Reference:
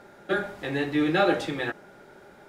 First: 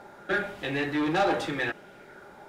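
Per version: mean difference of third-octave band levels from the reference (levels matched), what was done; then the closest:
2.5 dB: soft clipping −22.5 dBFS, distortion −11 dB
auto-filter bell 0.81 Hz 830–3,000 Hz +7 dB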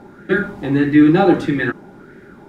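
6.0 dB: low shelf with overshoot 430 Hz +12.5 dB, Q 1.5
auto-filter bell 1.6 Hz 810–1,900 Hz +13 dB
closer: first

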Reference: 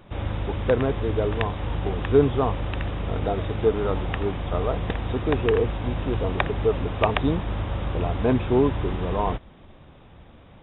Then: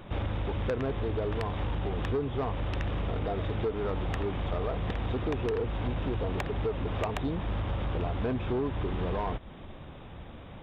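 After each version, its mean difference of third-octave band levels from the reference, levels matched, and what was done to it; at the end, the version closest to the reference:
3.5 dB: downward compressor 4 to 1, threshold −30 dBFS, peak gain reduction 15.5 dB
soft clipping −27 dBFS, distortion −16 dB
level +3.5 dB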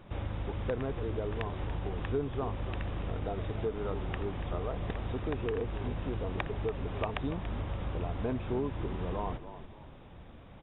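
2.0 dB: bass and treble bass +1 dB, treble −4 dB
downward compressor 2.5 to 1, threshold −31 dBFS, peak gain reduction 13 dB
on a send: echo with shifted repeats 285 ms, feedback 35%, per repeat −41 Hz, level −12 dB
on the sum: level −3.5 dB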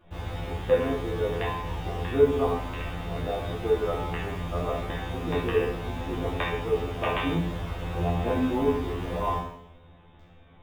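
7.0 dB: in parallel at −10 dB: bit-depth reduction 6 bits, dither none
on the sum: tuned comb filter 86 Hz, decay 0.34 s, harmonics all, mix 100%
coupled-rooms reverb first 0.65 s, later 2.1 s, from −26 dB, DRR −3 dB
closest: second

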